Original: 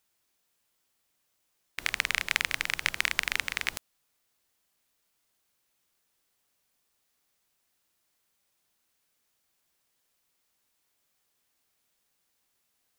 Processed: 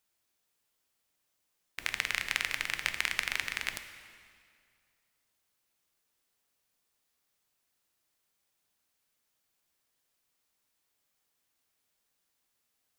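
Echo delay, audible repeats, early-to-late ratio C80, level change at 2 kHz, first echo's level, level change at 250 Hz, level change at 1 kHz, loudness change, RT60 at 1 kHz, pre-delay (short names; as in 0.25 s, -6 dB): none, none, 10.5 dB, -3.5 dB, none, -3.5 dB, -3.5 dB, -3.5 dB, 2.2 s, 5 ms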